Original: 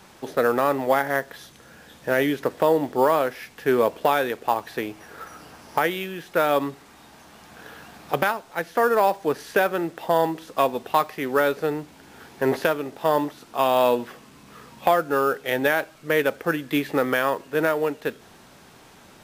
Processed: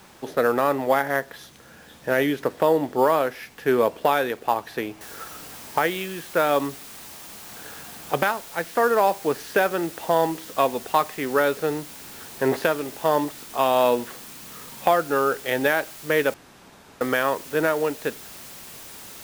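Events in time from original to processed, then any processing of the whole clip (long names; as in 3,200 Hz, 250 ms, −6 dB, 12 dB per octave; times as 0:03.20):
0:05.01: noise floor change −61 dB −42 dB
0:16.34–0:17.01: fill with room tone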